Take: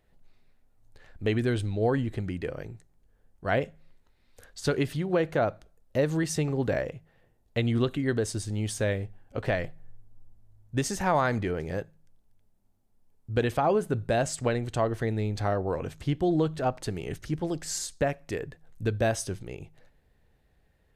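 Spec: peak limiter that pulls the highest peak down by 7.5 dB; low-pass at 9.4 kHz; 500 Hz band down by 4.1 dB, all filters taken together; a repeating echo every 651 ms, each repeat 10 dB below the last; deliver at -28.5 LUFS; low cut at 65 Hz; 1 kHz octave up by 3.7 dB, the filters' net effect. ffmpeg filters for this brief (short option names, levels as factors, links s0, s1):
-af "highpass=65,lowpass=9400,equalizer=f=500:t=o:g=-8,equalizer=f=1000:t=o:g=8.5,alimiter=limit=0.133:level=0:latency=1,aecho=1:1:651|1302|1953|2604:0.316|0.101|0.0324|0.0104,volume=1.41"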